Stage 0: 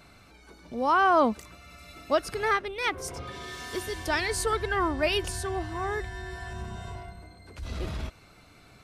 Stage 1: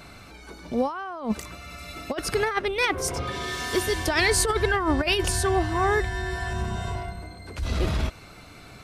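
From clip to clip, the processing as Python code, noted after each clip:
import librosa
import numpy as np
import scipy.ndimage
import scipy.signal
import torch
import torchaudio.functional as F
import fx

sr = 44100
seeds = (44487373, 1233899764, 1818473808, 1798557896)

y = fx.over_compress(x, sr, threshold_db=-28.0, ratio=-0.5)
y = y * librosa.db_to_amplitude(6.0)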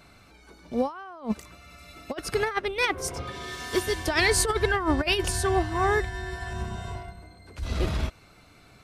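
y = fx.upward_expand(x, sr, threshold_db=-36.0, expansion=1.5)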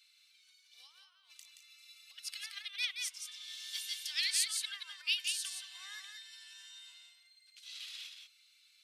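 y = fx.ladder_highpass(x, sr, hz=2700.0, resonance_pct=40)
y = y + 10.0 ** (-5.5 / 20.0) * np.pad(y, (int(175 * sr / 1000.0), 0))[:len(y)]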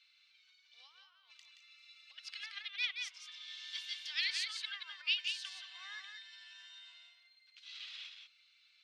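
y = fx.air_absorb(x, sr, metres=200.0)
y = y * librosa.db_to_amplitude(3.5)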